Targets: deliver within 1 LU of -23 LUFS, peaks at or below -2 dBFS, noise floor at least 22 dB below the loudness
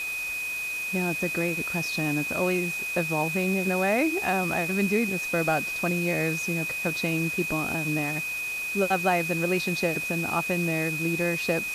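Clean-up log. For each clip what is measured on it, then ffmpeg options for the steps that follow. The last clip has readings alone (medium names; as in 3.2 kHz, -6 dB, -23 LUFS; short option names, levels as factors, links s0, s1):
steady tone 2.5 kHz; tone level -29 dBFS; noise floor -32 dBFS; noise floor target -48 dBFS; loudness -26.0 LUFS; peak level -10.5 dBFS; loudness target -23.0 LUFS
-> -af "bandreject=f=2500:w=30"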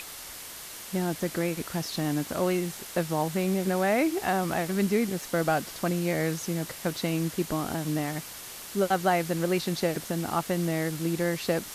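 steady tone not found; noise floor -42 dBFS; noise floor target -51 dBFS
-> -af "afftdn=nr=9:nf=-42"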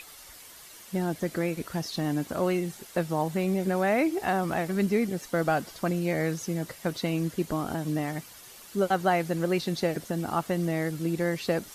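noise floor -49 dBFS; noise floor target -51 dBFS
-> -af "afftdn=nr=6:nf=-49"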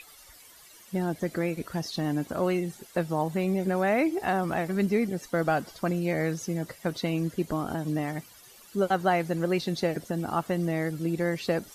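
noise floor -53 dBFS; loudness -29.0 LUFS; peak level -11.5 dBFS; loudness target -23.0 LUFS
-> -af "volume=2"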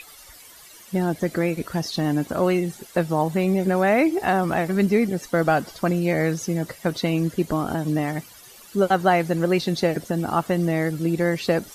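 loudness -23.0 LUFS; peak level -5.5 dBFS; noise floor -47 dBFS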